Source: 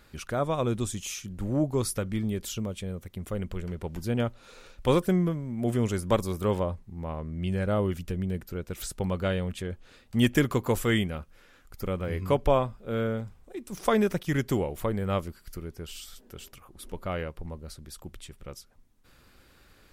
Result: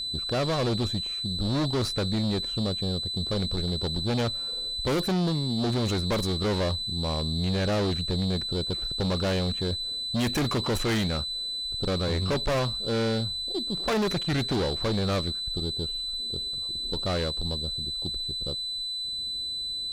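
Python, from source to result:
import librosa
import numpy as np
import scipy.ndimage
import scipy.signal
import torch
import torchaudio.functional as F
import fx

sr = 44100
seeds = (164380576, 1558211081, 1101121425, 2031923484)

y = fx.env_lowpass(x, sr, base_hz=410.0, full_db=-20.0)
y = y + 10.0 ** (-37.0 / 20.0) * np.sin(2.0 * np.pi * 4000.0 * np.arange(len(y)) / sr)
y = fx.tube_stage(y, sr, drive_db=32.0, bias=0.4)
y = y * librosa.db_to_amplitude(9.0)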